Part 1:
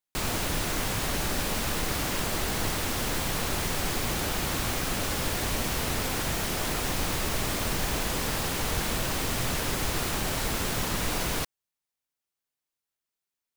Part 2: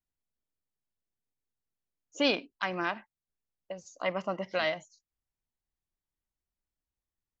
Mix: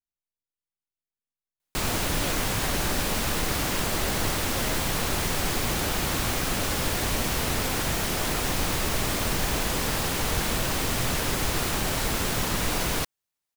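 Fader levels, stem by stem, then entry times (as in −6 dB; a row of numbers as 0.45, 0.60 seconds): +2.5, −10.0 decibels; 1.60, 0.00 seconds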